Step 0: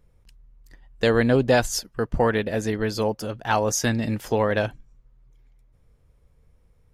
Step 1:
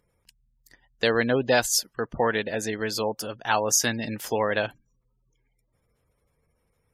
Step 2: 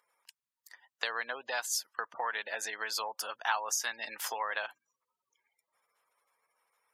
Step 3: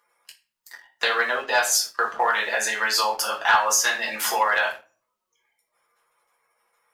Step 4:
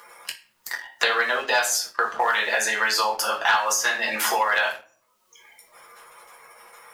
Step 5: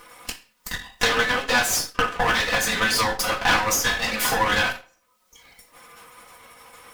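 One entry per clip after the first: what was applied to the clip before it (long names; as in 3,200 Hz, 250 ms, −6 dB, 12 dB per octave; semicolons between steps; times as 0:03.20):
spectral tilt +2 dB per octave; gate on every frequency bin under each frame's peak −30 dB strong; low-shelf EQ 61 Hz −9.5 dB; level −1 dB
downward compressor 6 to 1, threshold −30 dBFS, peak gain reduction 13.5 dB; high-pass with resonance 1,000 Hz, resonance Q 1.8
convolution reverb RT60 0.45 s, pre-delay 5 ms, DRR −3.5 dB; leveller curve on the samples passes 1; level +5 dB
multiband upward and downward compressor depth 70%
lower of the sound and its delayed copy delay 4 ms; level +2.5 dB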